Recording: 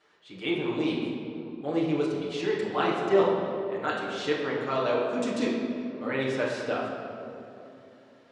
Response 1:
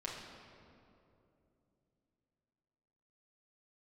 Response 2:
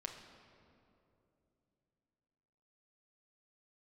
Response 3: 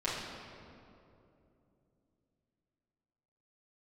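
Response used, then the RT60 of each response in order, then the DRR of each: 3; 2.8, 2.9, 2.8 seconds; −5.0, 1.5, −10.0 decibels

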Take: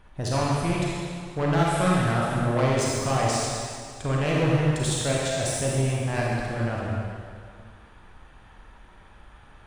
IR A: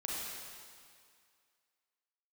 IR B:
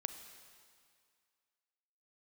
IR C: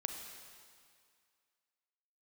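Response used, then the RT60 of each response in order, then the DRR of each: A; 2.1, 2.1, 2.1 seconds; −5.0, 8.5, 4.0 decibels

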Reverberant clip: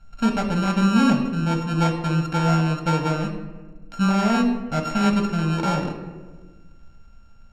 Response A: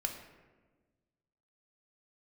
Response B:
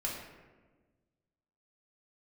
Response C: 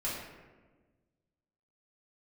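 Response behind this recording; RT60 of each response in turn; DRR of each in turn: A; 1.4, 1.4, 1.4 seconds; 3.0, −4.0, −8.5 decibels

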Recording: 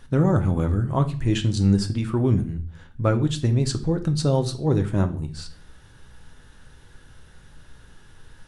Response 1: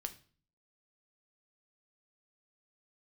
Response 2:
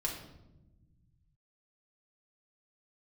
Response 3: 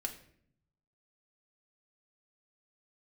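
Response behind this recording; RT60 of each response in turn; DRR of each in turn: 1; 0.45, 1.0, 0.60 seconds; 7.0, −2.5, 1.5 decibels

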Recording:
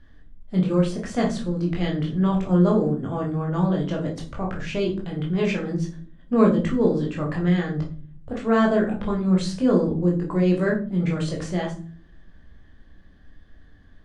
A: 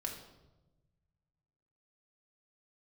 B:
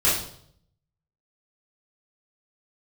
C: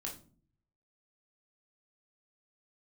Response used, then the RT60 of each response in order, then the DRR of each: C; 1.1 s, 0.65 s, non-exponential decay; 0.5, −11.0, −1.5 decibels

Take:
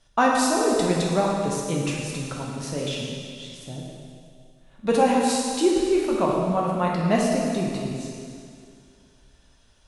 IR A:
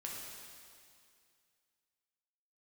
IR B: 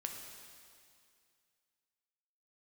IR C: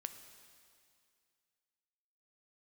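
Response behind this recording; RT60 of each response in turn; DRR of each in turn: A; 2.3, 2.3, 2.3 seconds; −3.5, 2.0, 8.0 decibels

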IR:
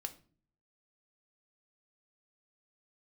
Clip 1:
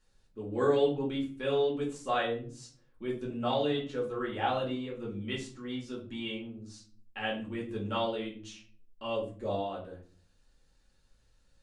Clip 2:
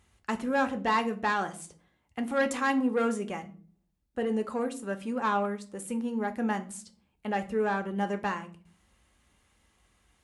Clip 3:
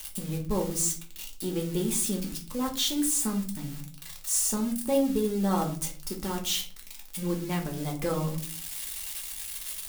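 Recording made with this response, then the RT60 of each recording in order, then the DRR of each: 2; 0.45 s, non-exponential decay, 0.45 s; −4.5, 7.0, 0.5 decibels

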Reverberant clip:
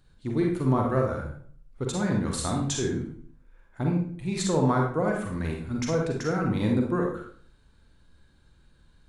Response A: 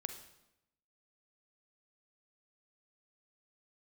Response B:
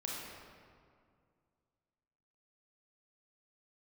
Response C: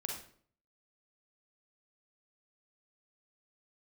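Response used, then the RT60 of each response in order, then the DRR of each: C; 0.85, 2.2, 0.55 seconds; 7.0, −4.0, 0.0 decibels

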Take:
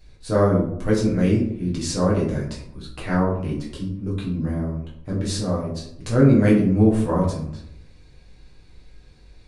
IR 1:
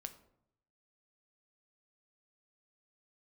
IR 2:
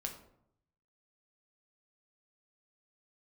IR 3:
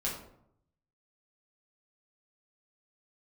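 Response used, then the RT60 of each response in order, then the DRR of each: 3; 0.75, 0.70, 0.70 seconds; 8.0, 2.0, −5.5 decibels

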